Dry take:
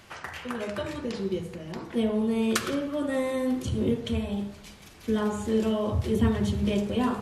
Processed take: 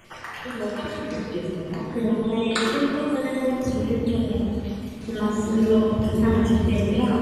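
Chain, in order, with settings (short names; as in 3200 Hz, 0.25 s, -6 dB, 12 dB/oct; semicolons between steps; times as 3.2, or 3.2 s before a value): random spectral dropouts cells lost 39%; 2.22–2.63 speaker cabinet 230–8500 Hz, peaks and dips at 250 Hz -8 dB, 480 Hz +5 dB, 790 Hz +5 dB, 3500 Hz +10 dB, 5400 Hz -4 dB; reverb RT60 2.5 s, pre-delay 6 ms, DRR -5 dB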